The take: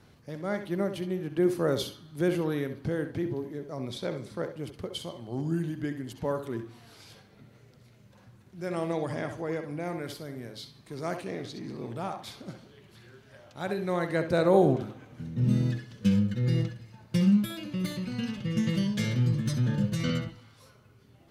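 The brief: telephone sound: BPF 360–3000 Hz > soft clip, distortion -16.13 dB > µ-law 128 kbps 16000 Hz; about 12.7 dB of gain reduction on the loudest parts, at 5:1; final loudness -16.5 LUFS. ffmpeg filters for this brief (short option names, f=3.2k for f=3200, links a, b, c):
-af "acompressor=threshold=-32dB:ratio=5,highpass=360,lowpass=3k,asoftclip=threshold=-32dB,volume=27dB" -ar 16000 -c:a pcm_mulaw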